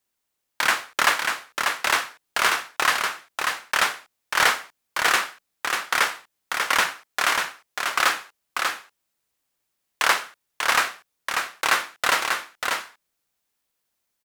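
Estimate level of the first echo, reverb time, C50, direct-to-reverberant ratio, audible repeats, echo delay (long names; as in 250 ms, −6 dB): −4.5 dB, no reverb audible, no reverb audible, no reverb audible, 1, 591 ms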